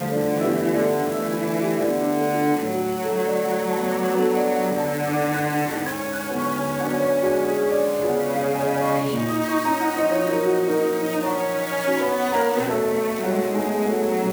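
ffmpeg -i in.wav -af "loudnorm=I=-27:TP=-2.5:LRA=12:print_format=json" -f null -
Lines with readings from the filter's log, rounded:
"input_i" : "-22.2",
"input_tp" : "-9.3",
"input_lra" : "1.1",
"input_thresh" : "-32.2",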